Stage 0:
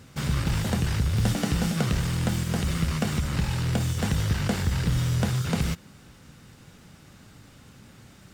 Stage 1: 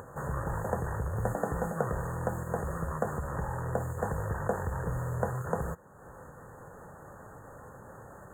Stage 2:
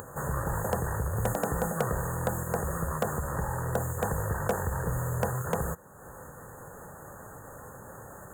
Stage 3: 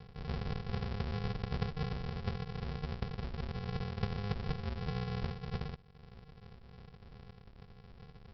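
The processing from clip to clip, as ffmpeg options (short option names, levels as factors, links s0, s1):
-af "acompressor=mode=upward:threshold=0.0251:ratio=2.5,equalizer=f=250:t=o:w=1:g=-6,equalizer=f=500:t=o:w=1:g=12,equalizer=f=1000:t=o:w=1:g=10,equalizer=f=4000:t=o:w=1:g=3,equalizer=f=8000:t=o:w=1:g=-5,afftfilt=real='re*(1-between(b*sr/4096,1900,6400))':imag='im*(1-between(b*sr/4096,1900,6400))':win_size=4096:overlap=0.75,volume=0.355"
-filter_complex "[0:a]crystalizer=i=2:c=0,asplit=2[s0][s1];[s1]aeval=exprs='(mod(8.41*val(0)+1,2)-1)/8.41':c=same,volume=0.299[s2];[s0][s2]amix=inputs=2:normalize=0"
-af "flanger=delay=6.4:depth=6.3:regen=-50:speed=1.6:shape=sinusoidal,aresample=11025,acrusher=samples=36:mix=1:aa=0.000001,aresample=44100,volume=0.708"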